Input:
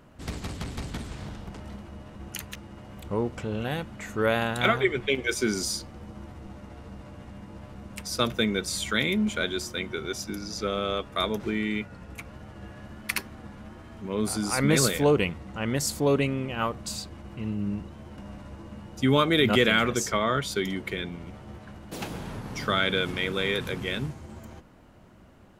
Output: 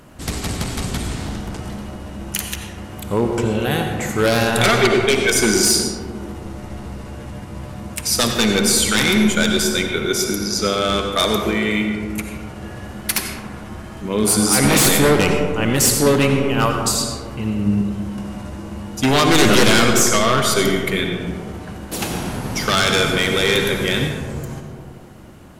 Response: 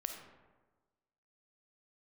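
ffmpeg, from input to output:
-filter_complex "[0:a]crystalizer=i=1.5:c=0,aeval=exprs='0.126*(abs(mod(val(0)/0.126+3,4)-2)-1)':c=same[s0];[1:a]atrim=start_sample=2205,asetrate=25137,aresample=44100[s1];[s0][s1]afir=irnorm=-1:irlink=0,volume=2.51"

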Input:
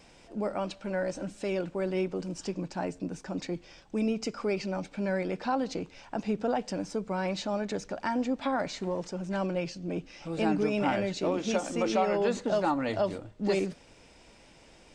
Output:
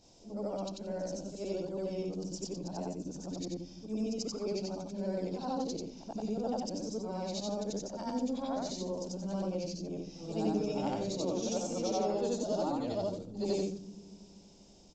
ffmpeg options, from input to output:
-filter_complex "[0:a]afftfilt=real='re':imag='-im':win_size=8192:overlap=0.75,highshelf=f=2800:g=8.5,acrossover=split=300|970|3700[s0][s1][s2][s3];[s0]aecho=1:1:242|484|726|968|1210|1452|1694:0.335|0.194|0.113|0.0654|0.0379|0.022|0.0128[s4];[s2]acrusher=bits=3:mix=0:aa=0.5[s5];[s4][s1][s5][s3]amix=inputs=4:normalize=0,aresample=16000,aresample=44100"

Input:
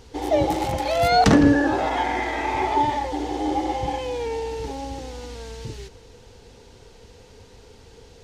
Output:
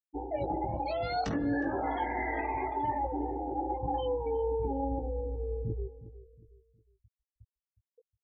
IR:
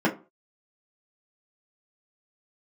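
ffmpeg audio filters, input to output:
-filter_complex "[0:a]afftfilt=real='re*gte(hypot(re,im),0.0708)':imag='im*gte(hypot(re,im),0.0708)':win_size=1024:overlap=0.75,areverse,acompressor=threshold=0.0316:ratio=16,areverse,asplit=2[s0][s1];[s1]adelay=18,volume=0.531[s2];[s0][s2]amix=inputs=2:normalize=0,asplit=2[s3][s4];[s4]adelay=363,lowpass=f=1400:p=1,volume=0.188,asplit=2[s5][s6];[s6]adelay=363,lowpass=f=1400:p=1,volume=0.36,asplit=2[s7][s8];[s8]adelay=363,lowpass=f=1400:p=1,volume=0.36[s9];[s3][s5][s7][s9]amix=inputs=4:normalize=0"

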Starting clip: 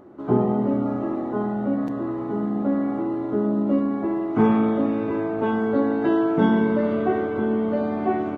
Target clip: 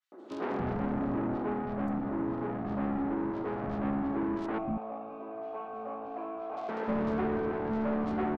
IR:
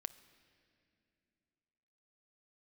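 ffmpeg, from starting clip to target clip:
-filter_complex "[0:a]highpass=120,lowshelf=f=240:g=8.5,asoftclip=type=hard:threshold=0.141,asettb=1/sr,asplit=3[s0][s1][s2];[s0]atrim=end=4.464[s3];[s1]atrim=start=4.46:end=6.57,asetpts=PTS-STARTPTS,afade=t=in:d=0.004:c=qsin,afade=t=out:st=2.106:d=0.004:c=qsin,asplit=3[s4][s5][s6];[s4]bandpass=f=730:t=q:w=8,volume=1[s7];[s5]bandpass=f=1090:t=q:w=8,volume=0.501[s8];[s6]bandpass=f=2440:t=q:w=8,volume=0.355[s9];[s7][s8][s9]amix=inputs=3:normalize=0[s10];[s2]atrim=start=6.566[s11];[s3][s10]acrossfade=d=0.004:c1=hsin:c2=qsin[s12];[s12][s11]acrossfade=d=0.004:c1=qsin:c2=hsin,asoftclip=type=tanh:threshold=0.0501,acrossover=split=280|3200[s13][s14][s15];[s14]adelay=120[s16];[s13]adelay=310[s17];[s17][s16][s15]amix=inputs=3:normalize=0,adynamicequalizer=threshold=0.00447:dfrequency=2300:dqfactor=0.7:tfrequency=2300:tqfactor=0.7:attack=5:release=100:ratio=0.375:range=2.5:mode=cutabove:tftype=highshelf,volume=0.841"

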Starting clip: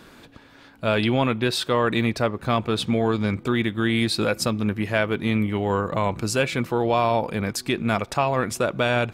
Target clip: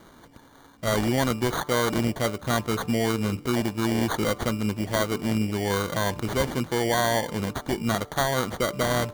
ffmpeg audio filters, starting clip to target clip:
-af "acrusher=samples=17:mix=1:aa=0.000001,bandreject=f=147.5:t=h:w=4,bandreject=f=295:t=h:w=4,bandreject=f=442.5:t=h:w=4,bandreject=f=590:t=h:w=4,bandreject=f=737.5:t=h:w=4,bandreject=f=885:t=h:w=4,bandreject=f=1032.5:t=h:w=4,bandreject=f=1180:t=h:w=4,bandreject=f=1327.5:t=h:w=4,volume=0.75"

